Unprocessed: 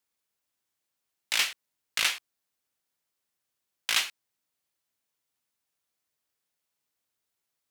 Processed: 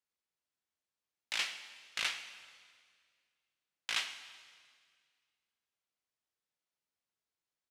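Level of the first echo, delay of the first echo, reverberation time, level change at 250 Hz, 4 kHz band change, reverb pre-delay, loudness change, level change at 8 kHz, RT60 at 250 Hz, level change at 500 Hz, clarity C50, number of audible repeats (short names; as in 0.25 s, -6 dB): -20.0 dB, 0.135 s, 1.9 s, -7.0 dB, -8.5 dB, 12 ms, -9.5 dB, -11.5 dB, 2.2 s, -7.0 dB, 10.5 dB, 1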